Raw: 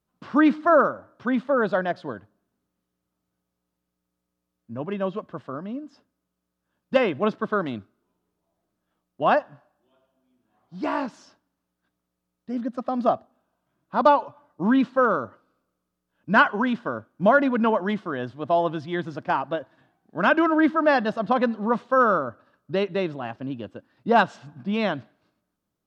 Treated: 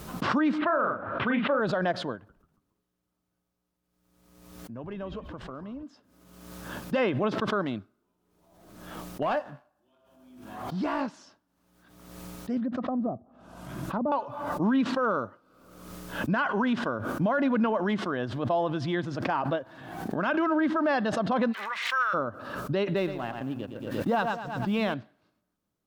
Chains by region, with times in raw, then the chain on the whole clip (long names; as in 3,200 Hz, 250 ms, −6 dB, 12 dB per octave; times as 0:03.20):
0:00.58–0:01.60: low-pass filter 3,200 Hz 24 dB per octave + parametric band 2,500 Hz +8.5 dB 1.5 octaves + double-tracking delay 37 ms −4.5 dB
0:02.15–0:05.83: downward compressor 2 to 1, threshold −39 dBFS + echo with shifted repeats 139 ms, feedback 45%, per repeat −130 Hz, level −13.5 dB
0:09.22–0:11.01: double-tracking delay 20 ms −11 dB + downward compressor 2.5 to 1, threshold −29 dBFS + leveller curve on the samples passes 1
0:12.57–0:14.12: treble cut that deepens with the level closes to 440 Hz, closed at −21 dBFS + bass and treble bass +6 dB, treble +2 dB + downward compressor 1.5 to 1, threshold −31 dBFS
0:21.52–0:22.13: surface crackle 170 per second −51 dBFS + high-pass with resonance 2,100 Hz, resonance Q 5.5
0:22.96–0:24.94: mu-law and A-law mismatch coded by A + repeating echo 114 ms, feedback 35%, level −11 dB
whole clip: brickwall limiter −16.5 dBFS; background raised ahead of every attack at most 47 dB per second; level −1.5 dB